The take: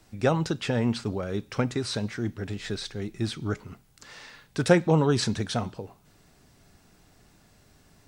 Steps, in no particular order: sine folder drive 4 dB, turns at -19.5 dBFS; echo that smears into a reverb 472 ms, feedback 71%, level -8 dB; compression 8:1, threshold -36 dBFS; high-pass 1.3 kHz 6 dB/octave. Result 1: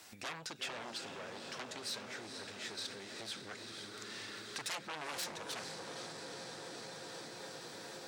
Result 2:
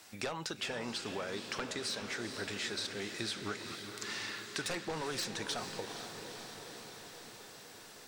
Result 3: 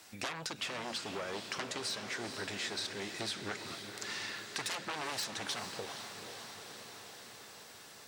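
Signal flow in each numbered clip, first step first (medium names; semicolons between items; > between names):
echo that smears into a reverb > sine folder > compression > high-pass; high-pass > sine folder > compression > echo that smears into a reverb; sine folder > high-pass > compression > echo that smears into a reverb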